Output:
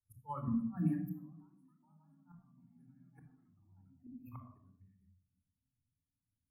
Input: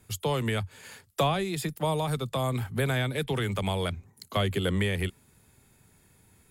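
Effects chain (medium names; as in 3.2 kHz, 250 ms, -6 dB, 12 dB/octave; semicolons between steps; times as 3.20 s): ever faster or slower copies 504 ms, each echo +5 st, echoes 2; FFT filter 160 Hz 0 dB, 270 Hz +7 dB, 430 Hz -17 dB, 1.1 kHz 0 dB, 2.8 kHz -15 dB, 4 kHz -29 dB, 9.6 kHz +10 dB, 15 kHz +5 dB; spectral noise reduction 15 dB; inverted gate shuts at -25 dBFS, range -30 dB; treble shelf 2.6 kHz -7 dB; simulated room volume 3900 m³, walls furnished, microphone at 4.2 m; spectral contrast expander 1.5:1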